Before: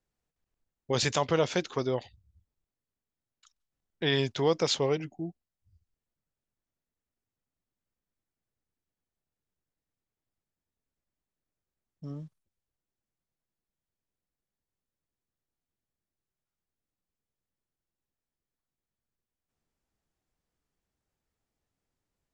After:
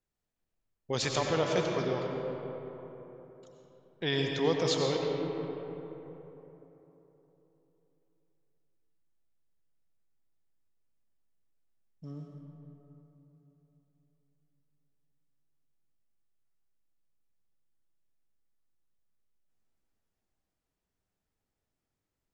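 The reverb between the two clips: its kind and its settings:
comb and all-pass reverb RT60 3.7 s, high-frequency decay 0.45×, pre-delay 55 ms, DRR 0.5 dB
level −4 dB

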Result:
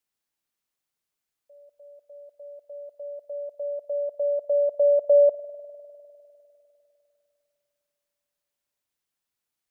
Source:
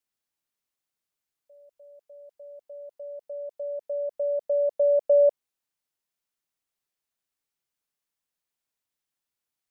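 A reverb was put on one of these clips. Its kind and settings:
spring reverb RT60 3 s, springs 50 ms, chirp 75 ms, DRR 12.5 dB
level +1.5 dB

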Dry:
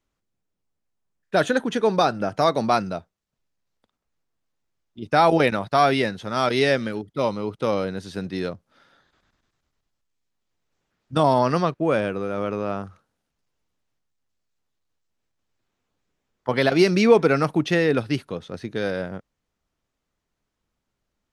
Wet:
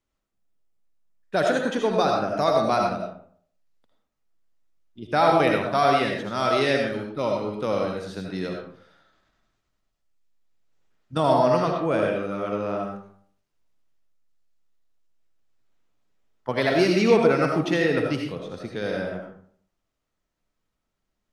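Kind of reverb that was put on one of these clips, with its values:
comb and all-pass reverb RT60 0.57 s, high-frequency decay 0.6×, pre-delay 40 ms, DRR 0.5 dB
level −4 dB

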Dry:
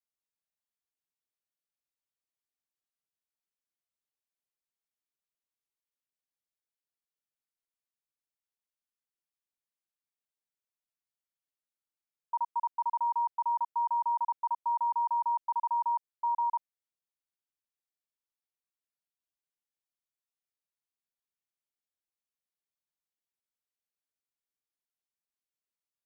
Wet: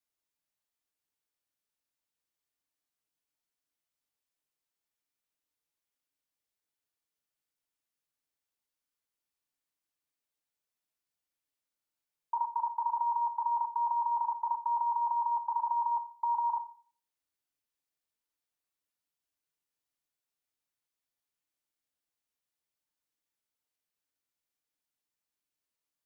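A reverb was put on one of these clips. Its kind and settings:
feedback delay network reverb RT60 0.44 s, low-frequency decay 1.2×, high-frequency decay 1×, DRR 6 dB
level +2.5 dB

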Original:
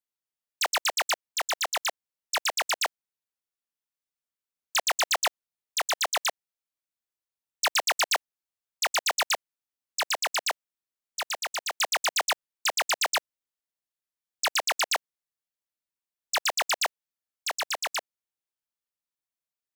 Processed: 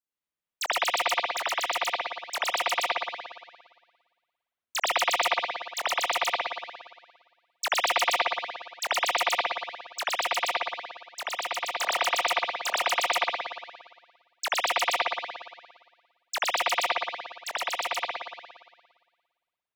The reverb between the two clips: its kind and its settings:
spring reverb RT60 1.5 s, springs 57 ms, chirp 50 ms, DRR −7.5 dB
level −5 dB

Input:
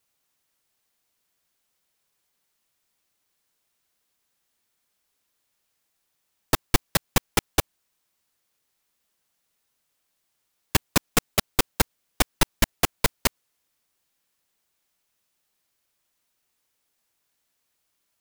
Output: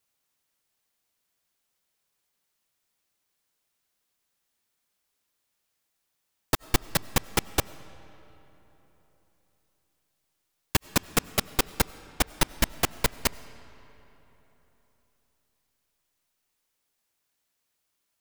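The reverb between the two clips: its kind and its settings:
comb and all-pass reverb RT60 3.7 s, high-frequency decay 0.65×, pre-delay 55 ms, DRR 18 dB
level −3 dB

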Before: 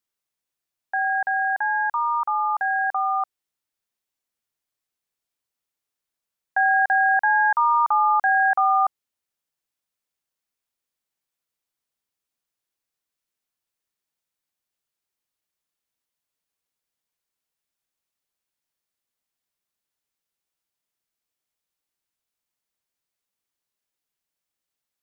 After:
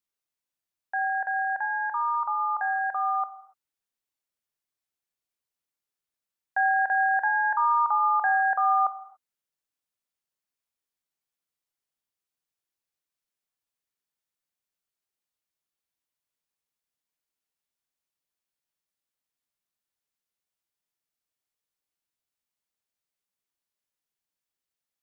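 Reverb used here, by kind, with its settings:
reverb whose tail is shaped and stops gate 310 ms falling, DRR 9.5 dB
level −5 dB

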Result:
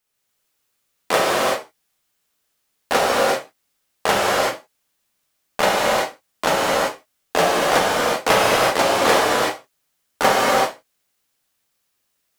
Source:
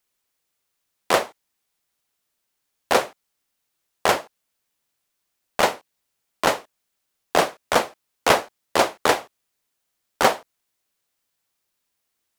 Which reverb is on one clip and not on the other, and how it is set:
reverb whose tail is shaped and stops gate 410 ms flat, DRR −6.5 dB
level −2 dB

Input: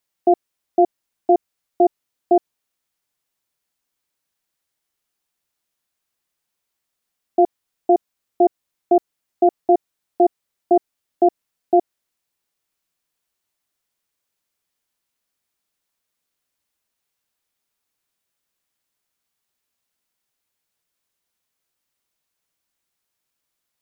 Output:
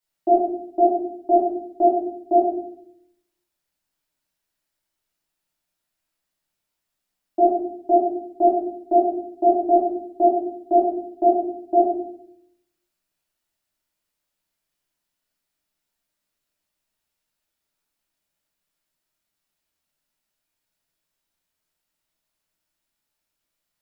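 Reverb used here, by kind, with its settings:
rectangular room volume 130 cubic metres, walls mixed, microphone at 2.7 metres
level −10.5 dB

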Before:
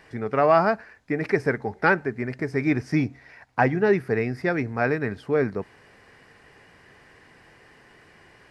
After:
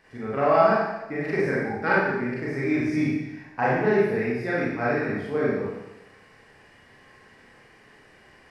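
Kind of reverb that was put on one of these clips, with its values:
four-comb reverb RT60 0.95 s, combs from 29 ms, DRR −7.5 dB
level −8.5 dB

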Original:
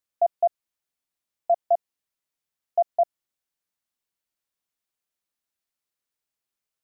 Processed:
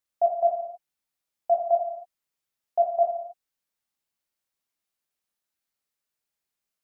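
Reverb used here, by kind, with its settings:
reverb whose tail is shaped and stops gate 310 ms falling, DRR 1 dB
level −1.5 dB

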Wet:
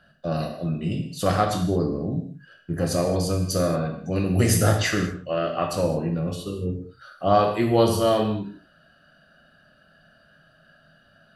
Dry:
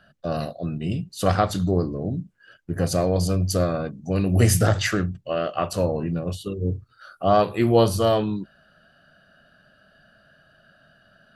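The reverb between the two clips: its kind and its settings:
reverb whose tail is shaped and stops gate 250 ms falling, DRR 2 dB
level −2 dB

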